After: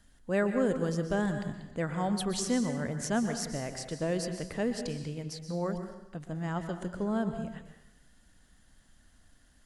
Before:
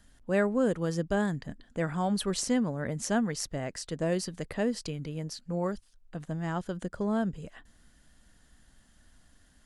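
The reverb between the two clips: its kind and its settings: plate-style reverb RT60 0.9 s, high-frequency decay 0.95×, pre-delay 0.11 s, DRR 7 dB; gain -2 dB

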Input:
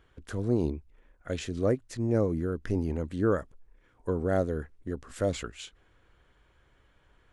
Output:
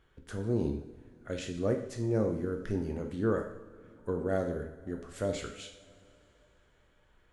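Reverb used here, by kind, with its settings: two-slope reverb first 0.6 s, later 3.5 s, from -20 dB, DRR 3 dB; gain -4.5 dB

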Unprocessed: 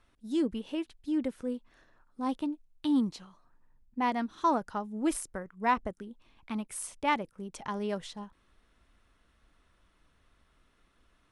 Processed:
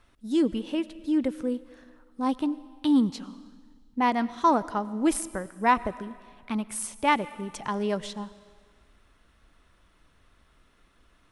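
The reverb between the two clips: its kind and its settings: digital reverb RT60 1.7 s, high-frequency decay 1×, pre-delay 60 ms, DRR 17.5 dB; gain +5.5 dB

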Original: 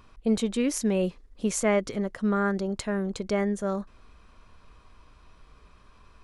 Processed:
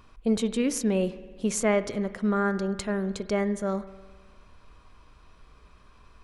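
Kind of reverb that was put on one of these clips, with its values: spring tank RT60 1.5 s, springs 52 ms, chirp 55 ms, DRR 14 dB

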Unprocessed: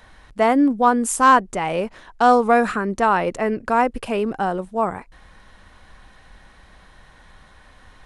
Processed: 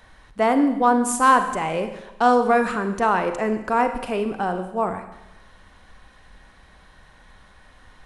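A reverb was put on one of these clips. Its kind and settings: Schroeder reverb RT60 1 s, combs from 33 ms, DRR 8 dB; gain -2.5 dB

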